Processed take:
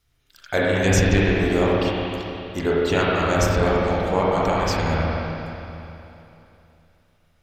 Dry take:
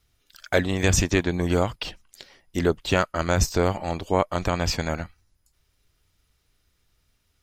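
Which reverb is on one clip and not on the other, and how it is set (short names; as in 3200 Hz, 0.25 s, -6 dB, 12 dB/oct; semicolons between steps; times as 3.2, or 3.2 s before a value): spring tank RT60 3 s, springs 30/37/50 ms, chirp 50 ms, DRR -6 dB; gain -2.5 dB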